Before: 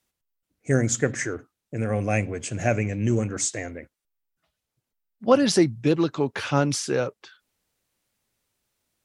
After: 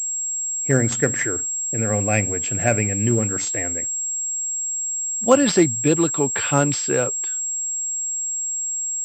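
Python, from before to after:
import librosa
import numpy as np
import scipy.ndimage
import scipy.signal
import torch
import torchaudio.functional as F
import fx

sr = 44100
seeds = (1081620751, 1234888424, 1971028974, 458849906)

y = fx.high_shelf(x, sr, hz=3000.0, db=9.0)
y = fx.pwm(y, sr, carrier_hz=7600.0)
y = F.gain(torch.from_numpy(y), 2.5).numpy()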